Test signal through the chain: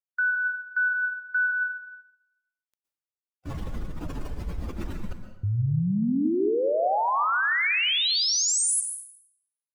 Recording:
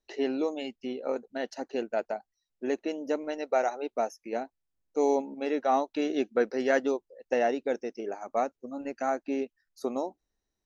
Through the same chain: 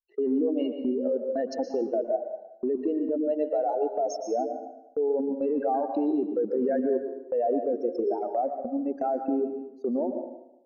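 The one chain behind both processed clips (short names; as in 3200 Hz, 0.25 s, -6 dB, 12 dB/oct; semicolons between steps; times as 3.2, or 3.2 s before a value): spectral contrast raised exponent 2.4; gate -40 dBFS, range -31 dB; in parallel at +1 dB: negative-ratio compressor -32 dBFS, ratio -0.5; on the sum: limiter -20 dBFS; plate-style reverb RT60 0.88 s, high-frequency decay 0.75×, pre-delay 0.105 s, DRR 6 dB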